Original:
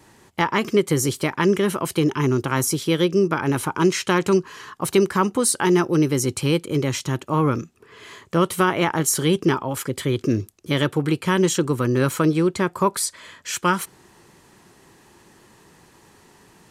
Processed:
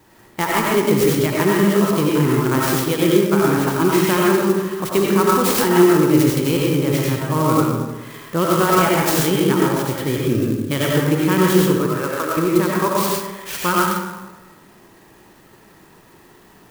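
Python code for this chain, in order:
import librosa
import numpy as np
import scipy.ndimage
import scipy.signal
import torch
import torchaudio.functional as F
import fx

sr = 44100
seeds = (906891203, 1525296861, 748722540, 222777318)

y = fx.bandpass_edges(x, sr, low_hz=590.0, high_hz=2300.0, at=(11.77, 12.37))
y = fx.rev_freeverb(y, sr, rt60_s=1.2, hf_ratio=0.55, predelay_ms=50, drr_db=-4.0)
y = fx.clock_jitter(y, sr, seeds[0], jitter_ms=0.041)
y = F.gain(torch.from_numpy(y), -1.0).numpy()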